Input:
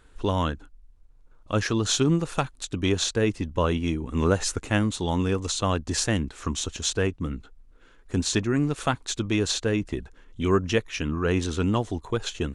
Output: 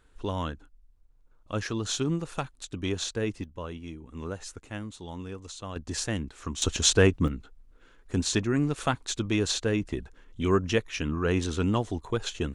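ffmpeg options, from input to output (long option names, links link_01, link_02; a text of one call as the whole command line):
ffmpeg -i in.wav -af "asetnsamples=nb_out_samples=441:pad=0,asendcmd='3.44 volume volume -14dB;5.76 volume volume -6dB;6.62 volume volume 5dB;7.28 volume volume -2dB',volume=-6.5dB" out.wav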